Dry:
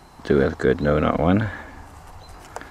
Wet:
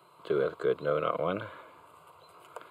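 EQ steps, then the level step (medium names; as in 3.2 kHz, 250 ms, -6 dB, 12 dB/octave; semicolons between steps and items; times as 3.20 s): high-pass 150 Hz 24 dB/octave; peaking EQ 930 Hz +5 dB 0.79 oct; static phaser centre 1.2 kHz, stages 8; -8.0 dB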